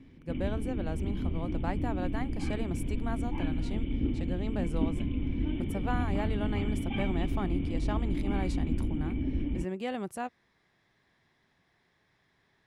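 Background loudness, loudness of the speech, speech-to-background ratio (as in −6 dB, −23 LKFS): −33.5 LKFS, −38.5 LKFS, −5.0 dB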